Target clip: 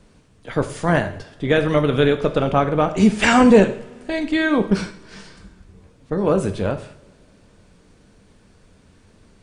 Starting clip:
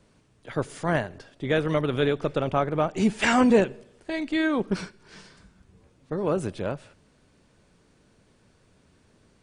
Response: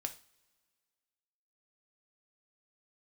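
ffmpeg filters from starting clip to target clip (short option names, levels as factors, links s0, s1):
-filter_complex "[0:a]asplit=2[s0][s1];[1:a]atrim=start_sample=2205,asetrate=29106,aresample=44100,lowshelf=f=120:g=8[s2];[s1][s2]afir=irnorm=-1:irlink=0,volume=2.24[s3];[s0][s3]amix=inputs=2:normalize=0,volume=0.596"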